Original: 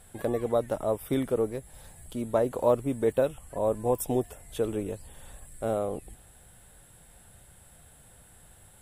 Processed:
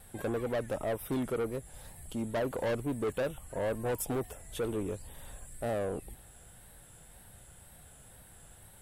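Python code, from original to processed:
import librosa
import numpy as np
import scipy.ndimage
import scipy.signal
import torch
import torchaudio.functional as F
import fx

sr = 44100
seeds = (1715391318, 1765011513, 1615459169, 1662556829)

y = 10.0 ** (-28.0 / 20.0) * np.tanh(x / 10.0 ** (-28.0 / 20.0))
y = fx.wow_flutter(y, sr, seeds[0], rate_hz=2.1, depth_cents=74.0)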